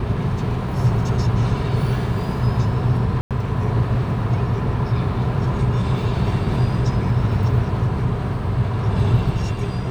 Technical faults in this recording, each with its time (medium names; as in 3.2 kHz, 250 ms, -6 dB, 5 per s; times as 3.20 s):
3.21–3.31 s: dropout 97 ms